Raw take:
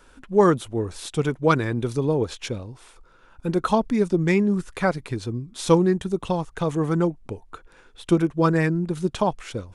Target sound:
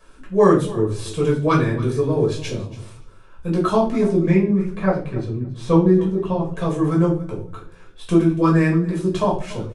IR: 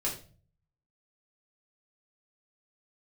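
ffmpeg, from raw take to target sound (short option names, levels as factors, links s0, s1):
-filter_complex "[0:a]asettb=1/sr,asplit=3[s0][s1][s2];[s0]atrim=end=4.224[s3];[s1]atrim=start=4.22:end=6.52,asetpts=PTS-STARTPTS,afade=t=in:d=0.004:c=qsin,afade=t=out:st=2.296:d=0.004:c=qsin,lowpass=f=1500:p=1[s4];[s2]atrim=start=6.516[s5];[s3][s4]acrossfade=d=0.004:c1=hsin:c2=qsin[s6];[s6][s5]acrossfade=d=0.004:c1=qsin:c2=hsin,aecho=1:1:283|566:0.126|0.0227[s7];[1:a]atrim=start_sample=2205[s8];[s7][s8]afir=irnorm=-1:irlink=0,volume=0.708"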